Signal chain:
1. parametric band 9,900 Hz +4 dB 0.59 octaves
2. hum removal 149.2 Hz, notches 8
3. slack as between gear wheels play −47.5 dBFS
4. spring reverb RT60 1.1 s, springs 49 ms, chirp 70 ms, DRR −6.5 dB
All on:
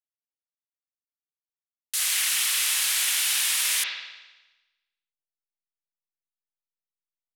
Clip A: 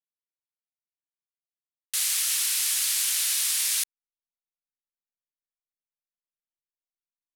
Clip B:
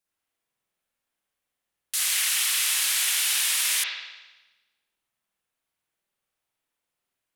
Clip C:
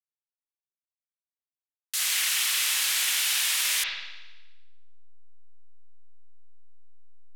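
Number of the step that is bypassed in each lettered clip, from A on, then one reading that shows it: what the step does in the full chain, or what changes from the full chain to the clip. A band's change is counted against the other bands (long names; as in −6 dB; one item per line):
4, change in momentary loudness spread −3 LU
3, distortion level −29 dB
1, 8 kHz band −2.5 dB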